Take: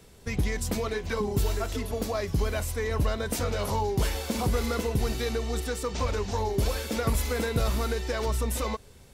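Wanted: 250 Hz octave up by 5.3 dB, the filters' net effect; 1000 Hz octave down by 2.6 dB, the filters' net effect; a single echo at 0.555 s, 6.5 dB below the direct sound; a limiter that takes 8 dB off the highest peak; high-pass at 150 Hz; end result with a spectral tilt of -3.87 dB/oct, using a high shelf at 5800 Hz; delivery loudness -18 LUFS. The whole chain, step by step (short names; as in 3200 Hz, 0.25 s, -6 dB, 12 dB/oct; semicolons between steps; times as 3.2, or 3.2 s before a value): HPF 150 Hz; bell 250 Hz +7.5 dB; bell 1000 Hz -4 dB; high shelf 5800 Hz +8 dB; limiter -19.5 dBFS; echo 0.555 s -6.5 dB; gain +11 dB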